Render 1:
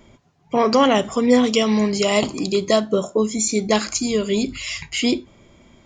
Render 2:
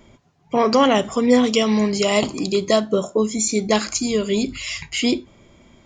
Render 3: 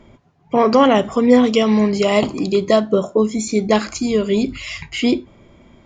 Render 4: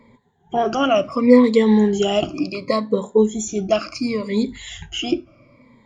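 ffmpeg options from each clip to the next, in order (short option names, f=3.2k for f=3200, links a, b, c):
-af anull
-af "lowpass=f=2.2k:p=1,volume=3.5dB"
-af "afftfilt=real='re*pow(10,19/40*sin(2*PI*(0.97*log(max(b,1)*sr/1024/100)/log(2)-(-0.7)*(pts-256)/sr)))':imag='im*pow(10,19/40*sin(2*PI*(0.97*log(max(b,1)*sr/1024/100)/log(2)-(-0.7)*(pts-256)/sr)))':win_size=1024:overlap=0.75,volume=-7dB"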